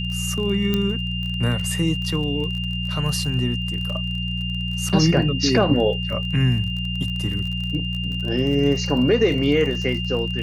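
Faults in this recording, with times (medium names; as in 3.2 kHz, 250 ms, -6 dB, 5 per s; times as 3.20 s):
crackle 31 per s -29 dBFS
hum 60 Hz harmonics 3 -27 dBFS
whine 2.8 kHz -28 dBFS
0.74 s: pop -9 dBFS
4.89–4.90 s: dropout 5.8 ms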